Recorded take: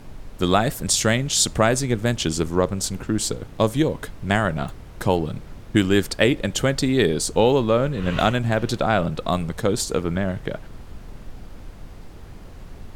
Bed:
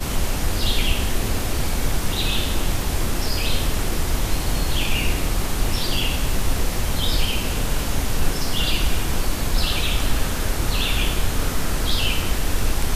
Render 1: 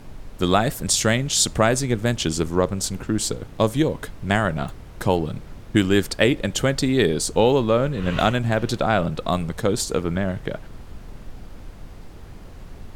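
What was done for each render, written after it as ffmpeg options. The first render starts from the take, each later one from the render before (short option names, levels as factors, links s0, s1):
-af anull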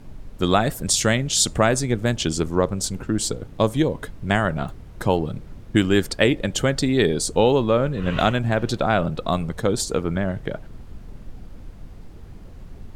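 -af "afftdn=nr=6:nf=-41"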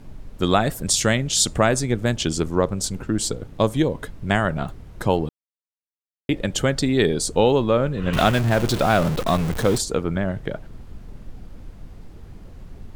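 -filter_complex "[0:a]asettb=1/sr,asplit=3[s0][s1][s2];[s0]atrim=end=8.134[s3];[s1]atrim=start=8.13:end=9.78,asetpts=PTS-STARTPTS,afade=t=in:d=0.004:c=qsin,afade=t=out:st=1.646:d=0.004:c=qsin,aeval=exprs='val(0)+0.5*0.0668*sgn(val(0))':c=same[s4];[s2]atrim=start=9.776[s5];[s3][s4]acrossfade=d=0.004:c1=hsin:c2=qsin[s6];[s6][s5]acrossfade=d=0.004:c1=qsin:c2=hsin,asplit=3[s7][s8][s9];[s7]atrim=end=5.29,asetpts=PTS-STARTPTS,afade=t=out:st=5.286:d=0.004:c=hsin[s10];[s8]atrim=start=5.29:end=6.29,asetpts=PTS-STARTPTS,volume=0[s11];[s9]atrim=start=6.29,asetpts=PTS-STARTPTS,afade=t=in:d=0.004:c=hsin[s12];[s10][s11][s12]concat=n=3:v=0:a=1"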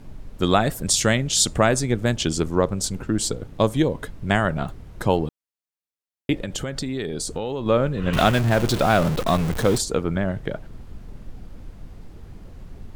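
-filter_complex "[0:a]asettb=1/sr,asplit=3[s0][s1][s2];[s0]atrim=end=6.374[s3];[s1]atrim=start=6.37:end=7.66,asetpts=PTS-STARTPTS,afade=t=in:d=0.004:c=qsin,afade=t=out:st=1.286:d=0.004:c=qsin,acompressor=threshold=0.0631:ratio=6:attack=3.2:release=140:knee=1:detection=peak[s4];[s2]atrim=start=7.656[s5];[s3][s4]acrossfade=d=0.004:c1=hsin:c2=qsin[s6];[s6][s5]acrossfade=d=0.004:c1=qsin:c2=hsin"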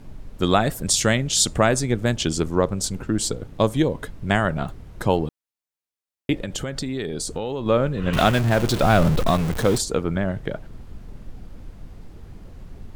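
-filter_complex "[0:a]asettb=1/sr,asplit=3[s0][s1][s2];[s0]atrim=end=8.834[s3];[s1]atrim=start=8.83:end=9.31,asetpts=PTS-STARTPTS,afade=t=in:d=0.004:c=qsin,afade=t=out:st=0.476:d=0.004:c=qsin,lowshelf=f=130:g=9[s4];[s2]atrim=start=9.306[s5];[s3][s4]acrossfade=d=0.004:c1=hsin:c2=qsin[s6];[s6][s5]acrossfade=d=0.004:c1=qsin:c2=hsin"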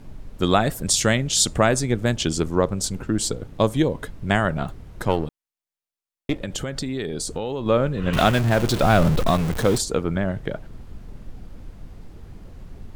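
-filter_complex "[0:a]asettb=1/sr,asplit=3[s0][s1][s2];[s0]atrim=end=5.024[s3];[s1]atrim=start=5.02:end=6.41,asetpts=PTS-STARTPTS,afade=t=in:d=0.004:c=qsin,afade=t=out:st=1.386:d=0.004:c=qsin,aeval=exprs='if(lt(val(0),0),0.447*val(0),val(0))':c=same[s4];[s2]atrim=start=6.406[s5];[s3][s4]acrossfade=d=0.004:c1=hsin:c2=qsin[s6];[s6][s5]acrossfade=d=0.004:c1=qsin:c2=hsin"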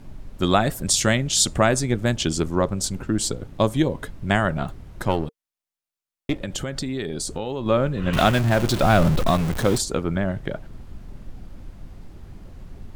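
-af "bandreject=f=460:w=12"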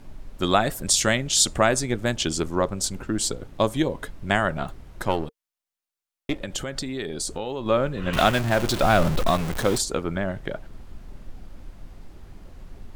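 -af "equalizer=f=120:t=o:w=2.5:g=-6"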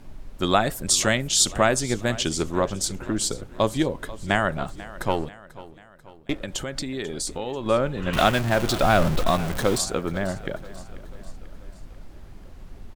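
-af "aecho=1:1:490|980|1470|1960:0.126|0.0667|0.0354|0.0187"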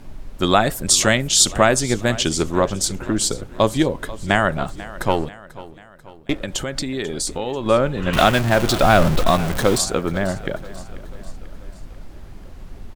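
-af "volume=1.78,alimiter=limit=0.891:level=0:latency=1"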